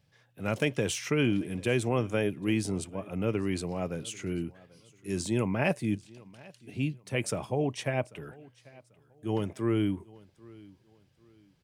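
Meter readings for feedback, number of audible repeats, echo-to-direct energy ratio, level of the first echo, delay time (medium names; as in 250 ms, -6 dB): 31%, 2, -22.5 dB, -23.0 dB, 791 ms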